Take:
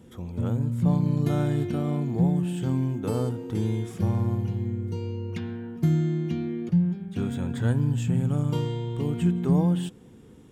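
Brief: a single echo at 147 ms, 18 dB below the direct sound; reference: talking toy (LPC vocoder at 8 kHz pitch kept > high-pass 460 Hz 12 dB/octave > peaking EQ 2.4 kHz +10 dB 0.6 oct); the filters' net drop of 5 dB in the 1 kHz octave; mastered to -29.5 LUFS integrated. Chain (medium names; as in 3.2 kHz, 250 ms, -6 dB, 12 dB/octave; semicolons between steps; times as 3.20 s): peaking EQ 1 kHz -7 dB; delay 147 ms -18 dB; LPC vocoder at 8 kHz pitch kept; high-pass 460 Hz 12 dB/octave; peaking EQ 2.4 kHz +10 dB 0.6 oct; trim +10 dB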